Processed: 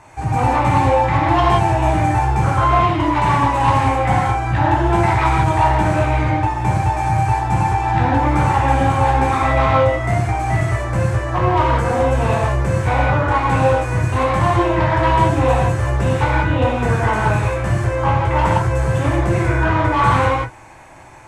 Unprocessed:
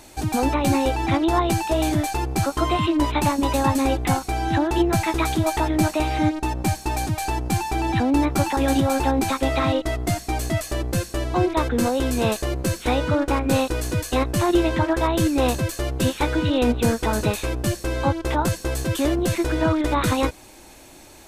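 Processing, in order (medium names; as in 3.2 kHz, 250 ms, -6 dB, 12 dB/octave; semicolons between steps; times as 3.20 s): graphic EQ 125/250/1000/2000/4000/8000 Hz +12/-4/+11/+8/-10/+4 dB; hard clipper -10 dBFS, distortion -14 dB; distance through air 75 m; gated-style reverb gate 210 ms flat, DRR -5.5 dB; trim -5.5 dB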